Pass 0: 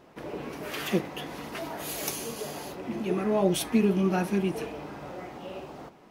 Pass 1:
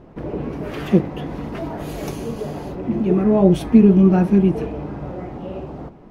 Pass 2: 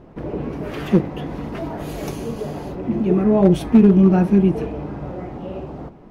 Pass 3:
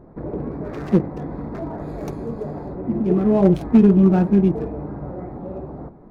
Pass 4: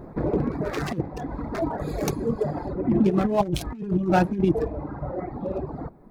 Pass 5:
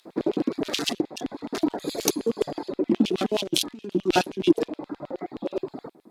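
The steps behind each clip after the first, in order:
tilt EQ -4 dB/octave; trim +4 dB
hard clipper -5 dBFS, distortion -25 dB
local Wiener filter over 15 samples; trim -1 dB
reverb removal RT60 2 s; treble shelf 2.3 kHz +10 dB; compressor with a negative ratio -21 dBFS, ratio -0.5; trim +1 dB
high-order bell 6 kHz +11.5 dB 2.5 oct; LFO high-pass square 9.5 Hz 300–3100 Hz; Chebyshev shaper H 7 -37 dB, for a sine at -0.5 dBFS; trim -1 dB

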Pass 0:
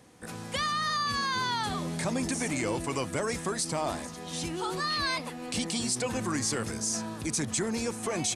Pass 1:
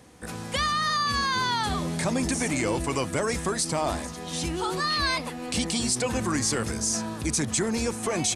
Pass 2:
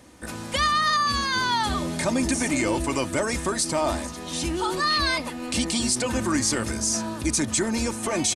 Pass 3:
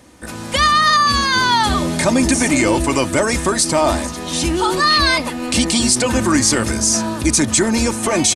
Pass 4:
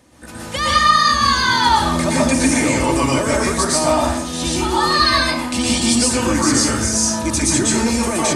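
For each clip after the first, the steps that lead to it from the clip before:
peaking EQ 66 Hz +14.5 dB 0.23 oct; trim +4 dB
comb 3.3 ms, depth 41%; trim +1.5 dB
level rider gain up to 5 dB; trim +4 dB
reverberation RT60 0.55 s, pre-delay 108 ms, DRR -5 dB; trim -6.5 dB

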